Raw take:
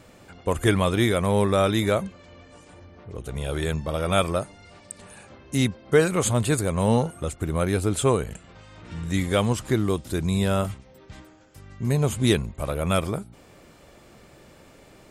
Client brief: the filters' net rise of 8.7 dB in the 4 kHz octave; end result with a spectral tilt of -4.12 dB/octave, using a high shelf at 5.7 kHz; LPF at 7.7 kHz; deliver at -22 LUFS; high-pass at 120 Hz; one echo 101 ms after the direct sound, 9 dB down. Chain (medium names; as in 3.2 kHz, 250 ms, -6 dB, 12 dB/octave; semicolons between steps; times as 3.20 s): high-pass 120 Hz; low-pass 7.7 kHz; peaking EQ 4 kHz +8 dB; treble shelf 5.7 kHz +7.5 dB; delay 101 ms -9 dB; trim +1 dB